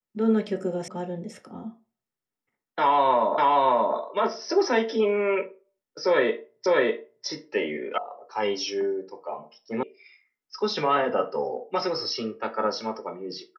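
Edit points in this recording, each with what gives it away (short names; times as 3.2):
0.88 sound cut off
3.38 repeat of the last 0.58 s
6.66 repeat of the last 0.6 s
7.98 sound cut off
9.83 sound cut off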